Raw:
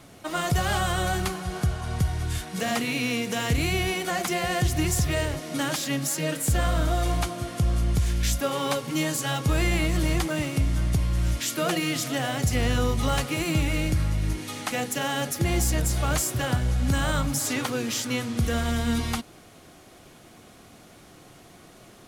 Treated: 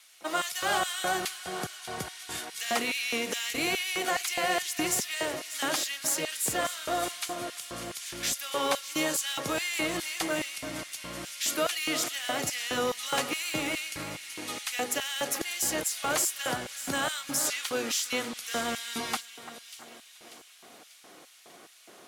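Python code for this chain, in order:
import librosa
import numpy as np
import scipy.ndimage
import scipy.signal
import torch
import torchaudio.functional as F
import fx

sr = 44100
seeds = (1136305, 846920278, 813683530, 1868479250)

p1 = fx.vibrato(x, sr, rate_hz=8.1, depth_cents=18.0)
p2 = p1 + fx.echo_split(p1, sr, split_hz=2100.0, low_ms=341, high_ms=591, feedback_pct=52, wet_db=-13.0, dry=0)
y = fx.filter_lfo_highpass(p2, sr, shape='square', hz=2.4, low_hz=370.0, high_hz=2400.0, q=0.77)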